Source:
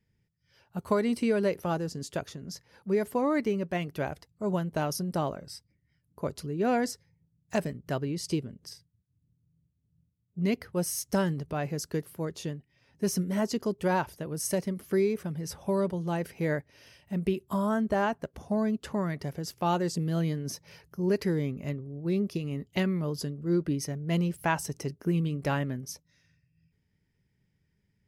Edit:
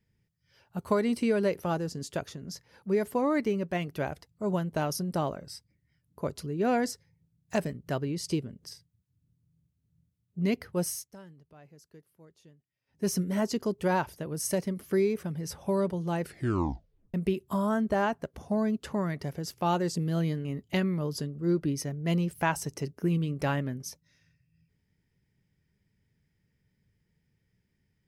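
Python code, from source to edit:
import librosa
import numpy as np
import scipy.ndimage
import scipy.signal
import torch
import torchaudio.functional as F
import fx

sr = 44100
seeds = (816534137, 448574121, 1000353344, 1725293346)

y = fx.edit(x, sr, fx.fade_down_up(start_s=10.88, length_s=2.19, db=-22.0, fade_s=0.21),
    fx.tape_stop(start_s=16.22, length_s=0.92),
    fx.cut(start_s=20.45, length_s=2.03), tone=tone)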